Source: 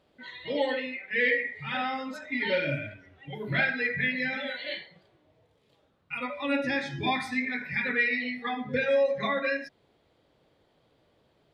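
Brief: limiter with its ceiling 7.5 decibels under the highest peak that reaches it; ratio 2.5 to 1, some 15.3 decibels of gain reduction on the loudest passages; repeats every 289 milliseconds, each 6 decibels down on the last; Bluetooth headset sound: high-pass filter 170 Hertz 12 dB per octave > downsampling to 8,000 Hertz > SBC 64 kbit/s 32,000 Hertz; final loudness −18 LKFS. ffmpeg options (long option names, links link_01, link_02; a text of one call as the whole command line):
ffmpeg -i in.wav -af "acompressor=threshold=-45dB:ratio=2.5,alimiter=level_in=11.5dB:limit=-24dB:level=0:latency=1,volume=-11.5dB,highpass=170,aecho=1:1:289|578|867|1156|1445|1734:0.501|0.251|0.125|0.0626|0.0313|0.0157,aresample=8000,aresample=44100,volume=25.5dB" -ar 32000 -c:a sbc -b:a 64k out.sbc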